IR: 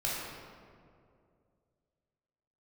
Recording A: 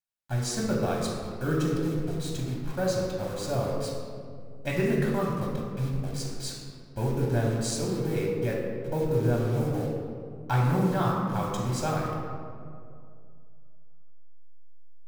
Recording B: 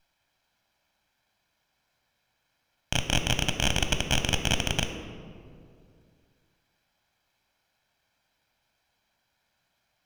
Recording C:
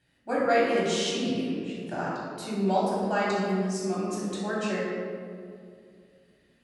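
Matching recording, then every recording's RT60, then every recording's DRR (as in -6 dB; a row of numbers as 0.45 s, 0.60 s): C; 2.4 s, 2.4 s, 2.4 s; -2.0 dB, 6.5 dB, -7.5 dB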